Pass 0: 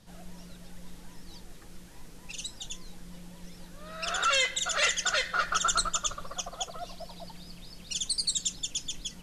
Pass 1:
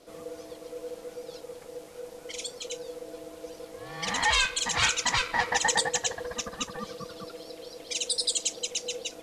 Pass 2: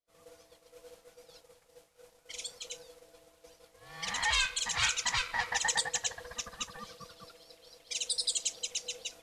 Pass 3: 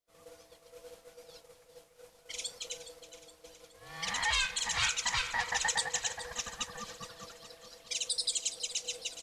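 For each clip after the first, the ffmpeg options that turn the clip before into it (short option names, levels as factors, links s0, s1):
-af "aeval=exprs='val(0)*sin(2*PI*490*n/s)':c=same,volume=1.68"
-af "equalizer=f=330:t=o:w=1.9:g=-12.5,agate=range=0.0224:threshold=0.00708:ratio=3:detection=peak,volume=0.631"
-filter_complex "[0:a]asplit=2[s0][s1];[s1]alimiter=level_in=1.19:limit=0.0631:level=0:latency=1:release=319,volume=0.841,volume=1[s2];[s0][s2]amix=inputs=2:normalize=0,aecho=1:1:418|836|1254|1672|2090:0.224|0.114|0.0582|0.0297|0.0151,volume=0.631"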